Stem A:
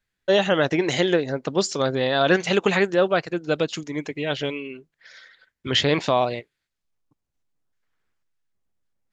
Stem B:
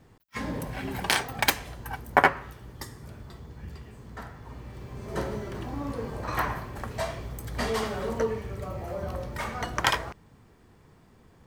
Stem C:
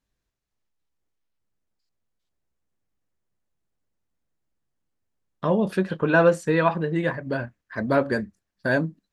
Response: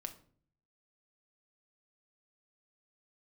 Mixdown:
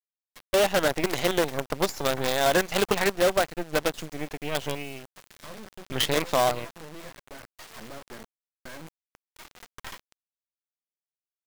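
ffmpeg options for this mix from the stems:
-filter_complex "[0:a]adynamicequalizer=threshold=0.02:dfrequency=760:dqfactor=1.2:tfrequency=760:tqfactor=1.2:attack=5:release=100:ratio=0.375:range=3:mode=boostabove:tftype=bell,adelay=250,volume=-2.5dB[link_01];[1:a]highpass=790,asoftclip=type=tanh:threshold=-15dB,volume=-11.5dB,asplit=2[link_02][link_03];[link_03]volume=-15dB[link_04];[2:a]acompressor=threshold=-21dB:ratio=20,volume=-14.5dB,asplit=3[link_05][link_06][link_07];[link_06]volume=-11dB[link_08];[link_07]apad=whole_len=505571[link_09];[link_02][link_09]sidechaincompress=threshold=-48dB:ratio=5:attack=34:release=282[link_10];[3:a]atrim=start_sample=2205[link_11];[link_04][link_08]amix=inputs=2:normalize=0[link_12];[link_12][link_11]afir=irnorm=-1:irlink=0[link_13];[link_01][link_10][link_05][link_13]amix=inputs=4:normalize=0,acrusher=bits=4:dc=4:mix=0:aa=0.000001,acompressor=threshold=-25dB:ratio=1.5"

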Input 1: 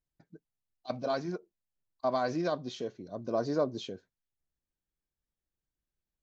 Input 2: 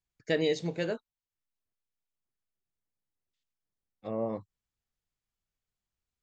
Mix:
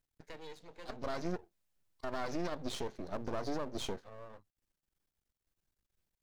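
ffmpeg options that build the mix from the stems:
ffmpeg -i stem1.wav -i stem2.wav -filter_complex "[0:a]acompressor=threshold=-33dB:ratio=6,volume=2dB[link_01];[1:a]acrossover=split=390|920|4900[link_02][link_03][link_04][link_05];[link_02]acompressor=threshold=-45dB:ratio=4[link_06];[link_03]acompressor=threshold=-36dB:ratio=4[link_07];[link_04]acompressor=threshold=-43dB:ratio=4[link_08];[link_05]acompressor=threshold=-56dB:ratio=4[link_09];[link_06][link_07][link_08][link_09]amix=inputs=4:normalize=0,volume=-14.5dB,asplit=2[link_10][link_11];[link_11]apad=whole_len=274341[link_12];[link_01][link_12]sidechaincompress=threshold=-58dB:ratio=5:attack=36:release=299[link_13];[link_13][link_10]amix=inputs=2:normalize=0,acontrast=36,aeval=exprs='max(val(0),0)':channel_layout=same,alimiter=level_in=1.5dB:limit=-24dB:level=0:latency=1:release=114,volume=-1.5dB" out.wav

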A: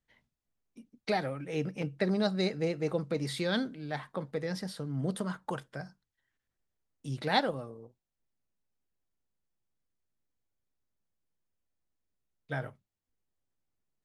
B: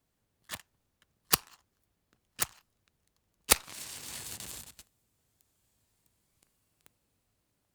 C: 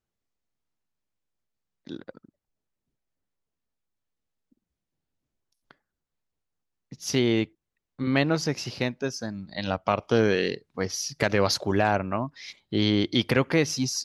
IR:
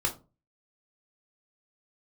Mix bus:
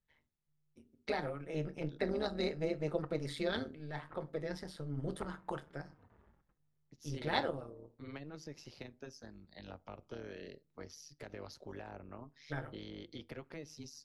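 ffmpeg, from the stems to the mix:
-filter_complex "[0:a]highshelf=frequency=5700:gain=-6.5,volume=-4dB,asplit=2[link_01][link_02];[link_02]volume=-11.5dB[link_03];[1:a]lowpass=frequency=1400:width=0.5412,lowpass=frequency=1400:width=1.3066,asplit=2[link_04][link_05];[link_05]adelay=3.2,afreqshift=-1.7[link_06];[link_04][link_06]amix=inputs=2:normalize=1,adelay=1700,volume=-8.5dB,asplit=2[link_07][link_08];[link_08]volume=-18dB[link_09];[2:a]acrossover=split=190|590[link_10][link_11][link_12];[link_10]acompressor=threshold=-37dB:ratio=4[link_13];[link_11]acompressor=threshold=-32dB:ratio=4[link_14];[link_12]acompressor=threshold=-36dB:ratio=4[link_15];[link_13][link_14][link_15]amix=inputs=3:normalize=0,volume=-14dB,asplit=2[link_16][link_17];[link_17]volume=-21dB[link_18];[3:a]atrim=start_sample=2205[link_19];[link_03][link_09][link_18]amix=inputs=3:normalize=0[link_20];[link_20][link_19]afir=irnorm=-1:irlink=0[link_21];[link_01][link_07][link_16][link_21]amix=inputs=4:normalize=0,tremolo=f=150:d=0.788"

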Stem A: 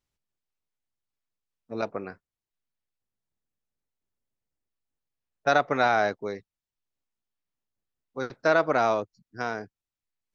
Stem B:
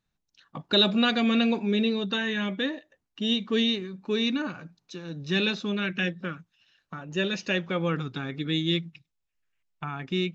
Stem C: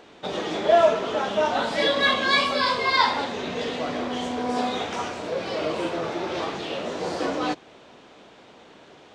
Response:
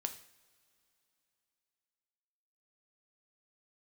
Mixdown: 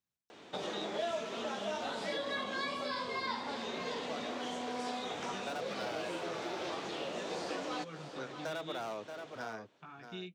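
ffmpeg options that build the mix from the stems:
-filter_complex "[0:a]volume=19dB,asoftclip=hard,volume=-19dB,volume=-10.5dB,asplit=2[link_01][link_02];[link_02]volume=-11dB[link_03];[1:a]flanger=delay=16.5:depth=4.4:speed=0.29,volume=-13dB[link_04];[2:a]adelay=300,volume=-5dB,asplit=2[link_05][link_06];[link_06]volume=-15.5dB[link_07];[link_03][link_07]amix=inputs=2:normalize=0,aecho=0:1:628:1[link_08];[link_01][link_04][link_05][link_08]amix=inputs=4:normalize=0,highpass=100,highshelf=frequency=5800:gain=4,acrossover=split=410|1700|5300[link_09][link_10][link_11][link_12];[link_09]acompressor=threshold=-46dB:ratio=4[link_13];[link_10]acompressor=threshold=-40dB:ratio=4[link_14];[link_11]acompressor=threshold=-47dB:ratio=4[link_15];[link_12]acompressor=threshold=-55dB:ratio=4[link_16];[link_13][link_14][link_15][link_16]amix=inputs=4:normalize=0"

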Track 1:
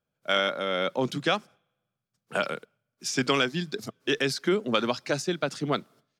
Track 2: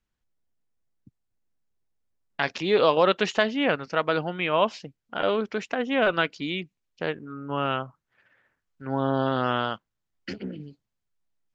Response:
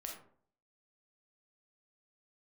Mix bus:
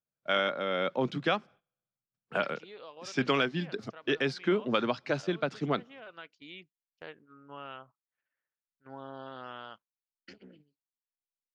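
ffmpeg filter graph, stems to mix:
-filter_complex "[0:a]lowpass=3200,volume=-2.5dB[link_01];[1:a]lowshelf=frequency=340:gain=-9.5,acompressor=threshold=-27dB:ratio=2,volume=-13dB,afade=type=in:start_time=6:duration=0.69:silence=0.421697[link_02];[link_01][link_02]amix=inputs=2:normalize=0,agate=range=-12dB:threshold=-56dB:ratio=16:detection=peak"

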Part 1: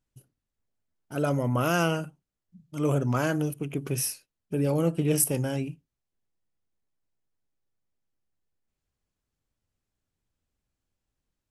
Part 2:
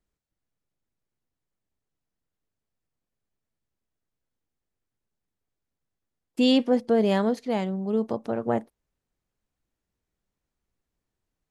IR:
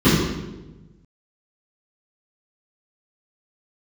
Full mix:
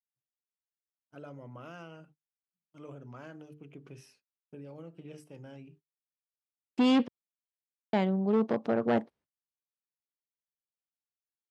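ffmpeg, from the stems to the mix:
-filter_complex "[0:a]bandreject=frequency=50:width_type=h:width=6,bandreject=frequency=100:width_type=h:width=6,bandreject=frequency=150:width_type=h:width=6,bandreject=frequency=200:width_type=h:width=6,bandreject=frequency=250:width_type=h:width=6,bandreject=frequency=300:width_type=h:width=6,bandreject=frequency=350:width_type=h:width=6,bandreject=frequency=400:width_type=h:width=6,bandreject=frequency=450:width_type=h:width=6,acompressor=threshold=-26dB:ratio=6,volume=-16dB[link_01];[1:a]volume=21.5dB,asoftclip=hard,volume=-21.5dB,adelay=400,volume=1dB,asplit=3[link_02][link_03][link_04];[link_02]atrim=end=7.08,asetpts=PTS-STARTPTS,afade=type=out:start_time=7.076:duration=0.004:curve=hsin[link_05];[link_03]atrim=start=7.08:end=7.93,asetpts=PTS-STARTPTS,volume=0[link_06];[link_04]atrim=start=7.93,asetpts=PTS-STARTPTS,afade=type=in:duration=0.004:curve=hsin[link_07];[link_05][link_06][link_07]concat=n=3:v=0:a=1[link_08];[link_01][link_08]amix=inputs=2:normalize=0,agate=range=-28dB:threshold=-58dB:ratio=16:detection=peak,highpass=110,lowpass=4000"

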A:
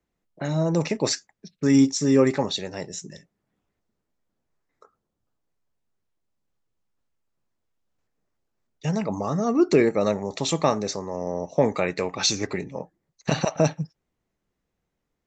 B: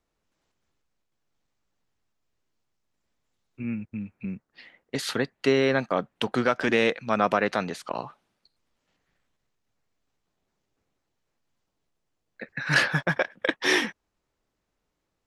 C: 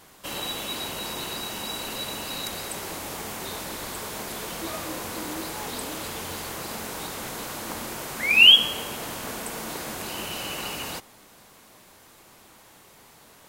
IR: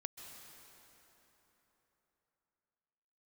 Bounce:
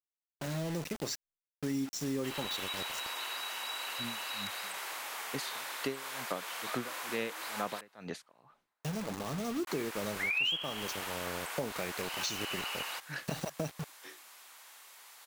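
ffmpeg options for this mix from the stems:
-filter_complex "[0:a]adynamicequalizer=threshold=0.0251:dfrequency=660:dqfactor=0.78:tfrequency=660:tqfactor=0.78:attack=5:release=100:ratio=0.375:range=2:mode=cutabove:tftype=bell,acrusher=bits=4:mix=0:aa=0.000001,volume=-10dB,asplit=2[link_01][link_02];[1:a]aeval=exprs='val(0)*pow(10,-31*(0.5-0.5*cos(2*PI*2.2*n/s))/20)':channel_layout=same,adelay=400,volume=-5dB[link_03];[2:a]highpass=1100,acrossover=split=3200[link_04][link_05];[link_05]acompressor=threshold=-43dB:ratio=4:attack=1:release=60[link_06];[link_04][link_06]amix=inputs=2:normalize=0,adelay=2000,volume=-0.5dB,asplit=3[link_07][link_08][link_09];[link_07]atrim=end=7.81,asetpts=PTS-STARTPTS,afade=type=out:start_time=7.806:duration=0.004:curve=hsin[link_10];[link_08]atrim=start=7.81:end=9.67,asetpts=PTS-STARTPTS,volume=0[link_11];[link_09]atrim=start=9.67,asetpts=PTS-STARTPTS,afade=type=in:duration=0.004:curve=hsin[link_12];[link_10][link_11][link_12]concat=n=3:v=0:a=1,asplit=2[link_13][link_14];[link_14]volume=-23.5dB[link_15];[link_02]apad=whole_len=690857[link_16];[link_03][link_16]sidechaincompress=threshold=-47dB:ratio=12:attack=16:release=1420[link_17];[3:a]atrim=start_sample=2205[link_18];[link_15][link_18]afir=irnorm=-1:irlink=0[link_19];[link_01][link_17][link_13][link_19]amix=inputs=4:normalize=0,acompressor=threshold=-32dB:ratio=4"

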